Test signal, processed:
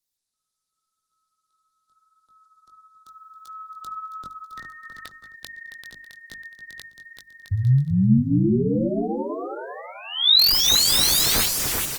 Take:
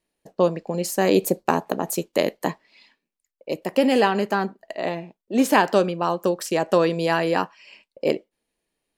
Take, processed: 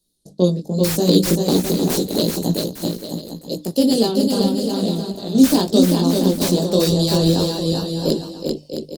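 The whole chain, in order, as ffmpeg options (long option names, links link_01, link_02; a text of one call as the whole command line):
ffmpeg -i in.wav -filter_complex "[0:a]firequalizer=gain_entry='entry(250,0);entry(930,-13);entry(2300,-23);entry(3600,12)':delay=0.05:min_phase=1,flanger=delay=17:depth=6.1:speed=0.84,acrossover=split=130|4900[link_01][link_02][link_03];[link_03]aeval=exprs='(mod(14.1*val(0)+1,2)-1)/14.1':channel_layout=same[link_04];[link_01][link_02][link_04]amix=inputs=3:normalize=0,lowshelf=frequency=300:gain=10.5,bandreject=frequency=50:width_type=h:width=6,bandreject=frequency=100:width_type=h:width=6,bandreject=frequency=150:width_type=h:width=6,bandreject=frequency=200:width_type=h:width=6,bandreject=frequency=250:width_type=h:width=6,bandreject=frequency=300:width_type=h:width=6,asplit=2[link_05][link_06];[link_06]aecho=0:1:390|663|854.1|987.9|1082:0.631|0.398|0.251|0.158|0.1[link_07];[link_05][link_07]amix=inputs=2:normalize=0,volume=4.5dB" -ar 48000 -c:a libopus -b:a 20k out.opus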